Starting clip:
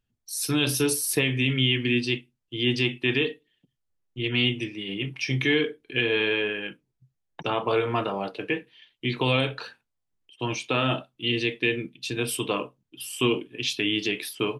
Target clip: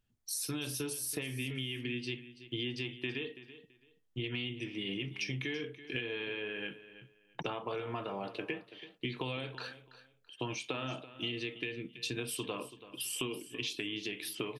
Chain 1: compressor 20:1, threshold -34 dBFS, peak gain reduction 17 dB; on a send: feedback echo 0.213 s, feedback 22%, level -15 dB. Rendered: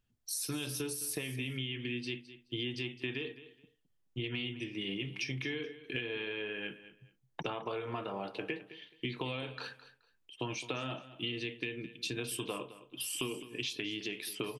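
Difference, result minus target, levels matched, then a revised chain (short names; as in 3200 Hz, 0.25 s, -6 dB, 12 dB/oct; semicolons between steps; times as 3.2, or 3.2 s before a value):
echo 0.119 s early
compressor 20:1, threshold -34 dBFS, peak gain reduction 17 dB; on a send: feedback echo 0.332 s, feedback 22%, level -15 dB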